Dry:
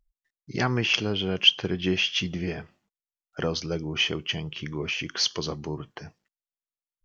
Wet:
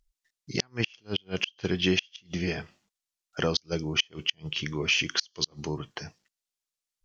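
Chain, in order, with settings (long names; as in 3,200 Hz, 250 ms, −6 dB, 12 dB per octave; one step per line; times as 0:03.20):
parametric band 5,900 Hz +9.5 dB 2.4 octaves
gate with flip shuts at −11 dBFS, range −36 dB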